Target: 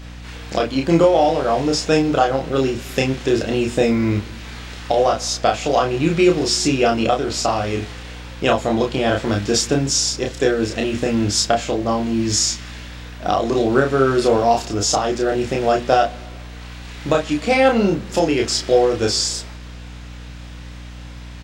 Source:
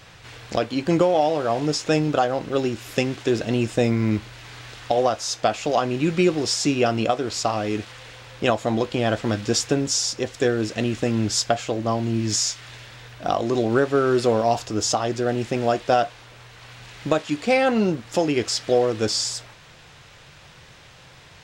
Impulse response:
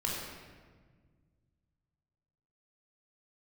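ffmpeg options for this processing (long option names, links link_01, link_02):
-filter_complex "[0:a]bandreject=frequency=60:width_type=h:width=6,bandreject=frequency=120:width_type=h:width=6,bandreject=frequency=180:width_type=h:width=6,bandreject=frequency=240:width_type=h:width=6,asplit=2[link_01][link_02];[link_02]adelay=30,volume=-2.5dB[link_03];[link_01][link_03]amix=inputs=2:normalize=0,aeval=exprs='val(0)+0.0141*(sin(2*PI*60*n/s)+sin(2*PI*2*60*n/s)/2+sin(2*PI*3*60*n/s)/3+sin(2*PI*4*60*n/s)/4+sin(2*PI*5*60*n/s)/5)':channel_layout=same,asplit=2[link_04][link_05];[1:a]atrim=start_sample=2205,asetrate=43218,aresample=44100[link_06];[link_05][link_06]afir=irnorm=-1:irlink=0,volume=-25.5dB[link_07];[link_04][link_07]amix=inputs=2:normalize=0,volume=2dB"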